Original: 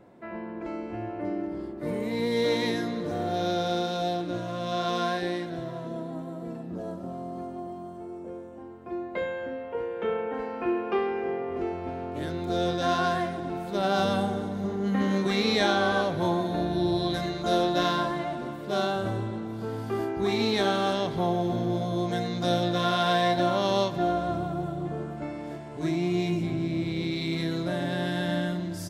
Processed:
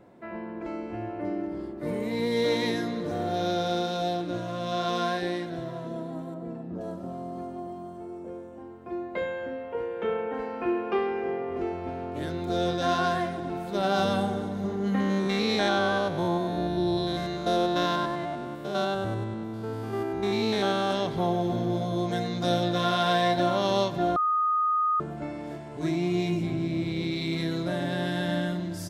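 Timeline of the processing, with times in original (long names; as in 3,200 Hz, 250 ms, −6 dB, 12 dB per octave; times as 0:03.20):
0:06.34–0:06.81: high-shelf EQ 3,000 Hz −11.5 dB
0:15.00–0:20.91: spectrum averaged block by block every 100 ms
0:24.16–0:25.00: beep over 1,240 Hz −21.5 dBFS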